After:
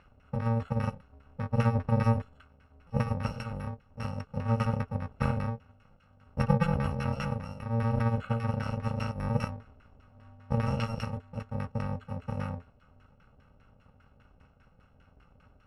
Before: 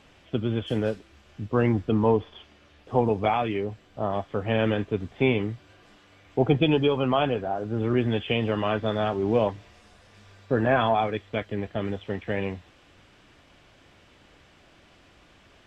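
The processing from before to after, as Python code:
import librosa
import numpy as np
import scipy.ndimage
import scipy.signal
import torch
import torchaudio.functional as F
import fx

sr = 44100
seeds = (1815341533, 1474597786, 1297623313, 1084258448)

y = fx.bit_reversed(x, sr, seeds[0], block=128)
y = fx.filter_lfo_lowpass(y, sr, shape='saw_down', hz=5.0, low_hz=570.0, high_hz=1700.0, q=1.4)
y = fx.notch(y, sr, hz=440.0, q=12.0)
y = F.gain(torch.from_numpy(y), 2.5).numpy()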